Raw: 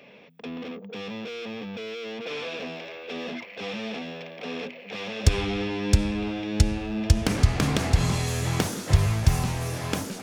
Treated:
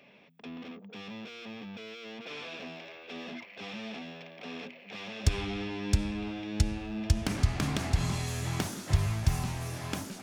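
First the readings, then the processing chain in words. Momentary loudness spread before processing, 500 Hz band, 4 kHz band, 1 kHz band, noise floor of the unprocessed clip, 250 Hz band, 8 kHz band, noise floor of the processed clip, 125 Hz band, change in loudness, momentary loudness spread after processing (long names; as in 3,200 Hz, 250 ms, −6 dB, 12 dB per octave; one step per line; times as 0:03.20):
13 LU, −9.5 dB, −6.5 dB, −6.5 dB, −45 dBFS, −6.5 dB, −6.5 dB, −53 dBFS, −6.5 dB, −6.5 dB, 14 LU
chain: parametric band 480 Hz −9 dB 0.25 octaves
level −6.5 dB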